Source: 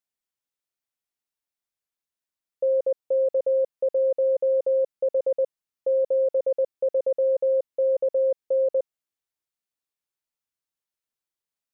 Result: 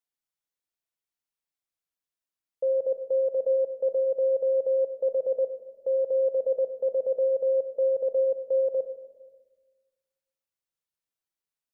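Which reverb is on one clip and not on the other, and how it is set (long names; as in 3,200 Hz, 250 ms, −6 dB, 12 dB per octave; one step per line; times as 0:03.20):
rectangular room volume 980 cubic metres, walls mixed, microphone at 0.66 metres
level −3.5 dB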